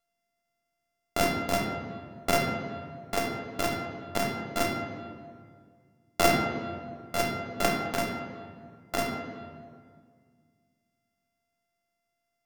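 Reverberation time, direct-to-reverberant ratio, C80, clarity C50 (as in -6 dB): 1.9 s, 1.0 dB, 6.0 dB, 4.5 dB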